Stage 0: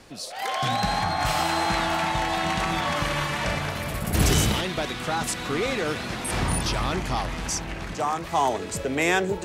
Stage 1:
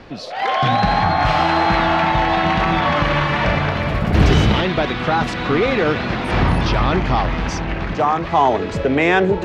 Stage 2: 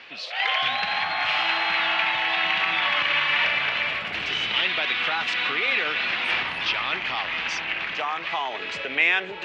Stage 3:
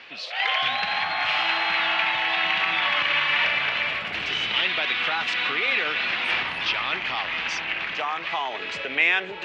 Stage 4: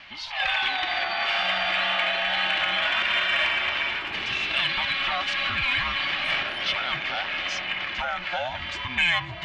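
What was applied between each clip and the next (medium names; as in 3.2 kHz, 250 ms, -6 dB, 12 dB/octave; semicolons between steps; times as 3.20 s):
in parallel at -1 dB: peak limiter -18 dBFS, peak gain reduction 9 dB; on the sum: distance through air 250 m; trim +5.5 dB
compression, threshold -16 dBFS, peak gain reduction 8 dB; band-pass filter 2.7 kHz, Q 2.3; trim +8 dB
no audible change
every band turned upside down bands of 500 Hz; in parallel at -11.5 dB: sine folder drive 3 dB, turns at -8 dBFS; on the sum: trim -5 dB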